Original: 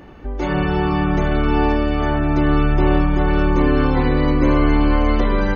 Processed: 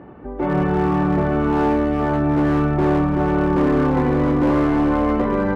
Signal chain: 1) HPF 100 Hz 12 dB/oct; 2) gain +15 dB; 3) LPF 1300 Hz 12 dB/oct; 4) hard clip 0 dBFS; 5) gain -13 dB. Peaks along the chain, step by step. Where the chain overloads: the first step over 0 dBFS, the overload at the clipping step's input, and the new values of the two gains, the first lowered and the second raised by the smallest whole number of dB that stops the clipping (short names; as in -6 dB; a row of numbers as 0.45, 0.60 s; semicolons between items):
-5.5, +9.5, +9.0, 0.0, -13.0 dBFS; step 2, 9.0 dB; step 2 +6 dB, step 5 -4 dB